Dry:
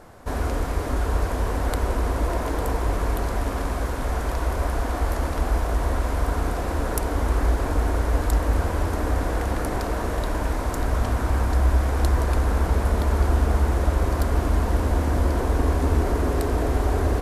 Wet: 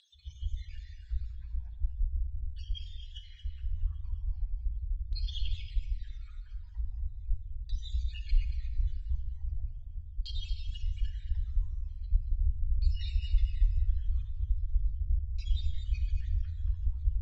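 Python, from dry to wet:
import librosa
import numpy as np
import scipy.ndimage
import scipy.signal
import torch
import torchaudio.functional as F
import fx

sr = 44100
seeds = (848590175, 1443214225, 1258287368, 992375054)

y = fx.spec_dropout(x, sr, seeds[0], share_pct=70)
y = scipy.signal.sosfilt(scipy.signal.cheby1(4, 1.0, [110.0, 3400.0], 'bandstop', fs=sr, output='sos'), y)
y = fx.spec_box(y, sr, start_s=1.32, length_s=2.45, low_hz=1400.0, high_hz=9000.0, gain_db=-8)
y = fx.highpass(y, sr, hz=69.0, slope=6)
y = fx.peak_eq(y, sr, hz=110.0, db=6.5, octaves=1.2)
y = fx.pitch_keep_formants(y, sr, semitones=-11.0)
y = fx.filter_lfo_lowpass(y, sr, shape='saw_down', hz=0.39, low_hz=370.0, high_hz=4000.0, q=7.0)
y = y + 10.0 ** (-10.0 / 20.0) * np.pad(y, (int(229 * sr / 1000.0), 0))[:len(y)]
y = fx.room_shoebox(y, sr, seeds[1], volume_m3=2100.0, walls='mixed', distance_m=1.1)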